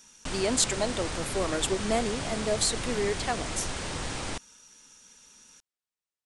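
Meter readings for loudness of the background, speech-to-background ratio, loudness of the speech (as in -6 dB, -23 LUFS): -34.0 LUFS, 4.0 dB, -30.0 LUFS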